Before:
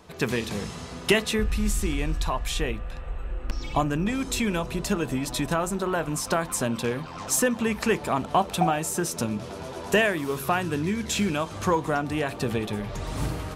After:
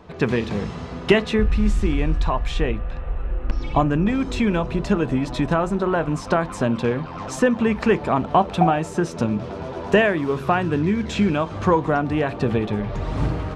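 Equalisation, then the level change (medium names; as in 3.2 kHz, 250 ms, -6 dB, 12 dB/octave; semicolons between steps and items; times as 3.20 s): tape spacing loss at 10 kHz 24 dB; +7.0 dB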